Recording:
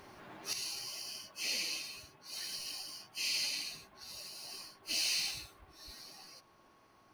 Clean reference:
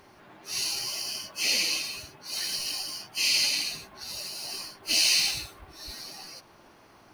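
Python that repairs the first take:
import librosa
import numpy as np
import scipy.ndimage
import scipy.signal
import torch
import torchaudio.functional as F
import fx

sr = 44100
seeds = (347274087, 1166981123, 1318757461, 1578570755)

y = fx.fix_declip(x, sr, threshold_db=-27.0)
y = fx.notch(y, sr, hz=1100.0, q=30.0)
y = fx.fix_level(y, sr, at_s=0.53, step_db=10.5)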